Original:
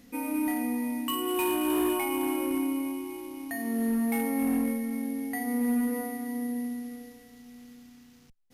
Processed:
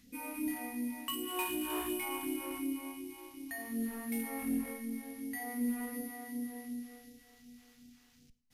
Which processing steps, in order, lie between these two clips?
all-pass phaser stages 2, 2.7 Hz, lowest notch 150–1,100 Hz
four-comb reverb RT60 0.54 s, combs from 33 ms, DRR 15.5 dB
level −5 dB

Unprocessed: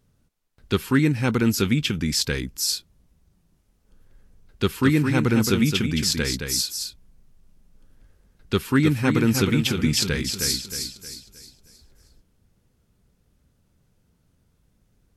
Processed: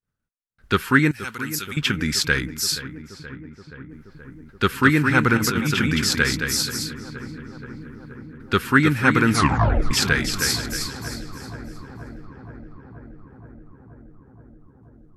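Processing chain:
0:01.11–0:01.77: first-order pre-emphasis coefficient 0.9
downward expander −51 dBFS
parametric band 1,500 Hz +12 dB 1.1 octaves
0:05.37–0:05.97: compressor whose output falls as the input rises −22 dBFS, ratio −1
0:09.30: tape stop 0.61 s
feedback echo with a low-pass in the loop 476 ms, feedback 80%, low-pass 2,000 Hz, level −14 dB

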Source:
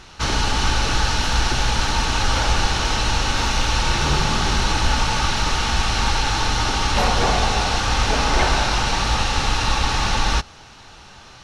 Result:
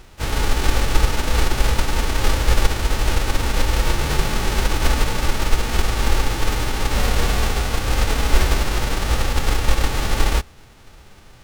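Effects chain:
spectral envelope flattened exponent 0.1
RIAA equalisation playback
pitch-shifted copies added +4 semitones −13 dB
level −2.5 dB

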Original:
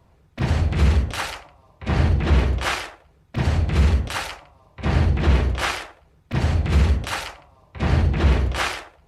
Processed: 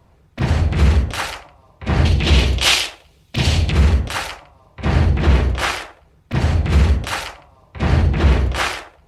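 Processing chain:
0:02.05–0:03.72: high shelf with overshoot 2,200 Hz +10 dB, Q 1.5
level +3.5 dB

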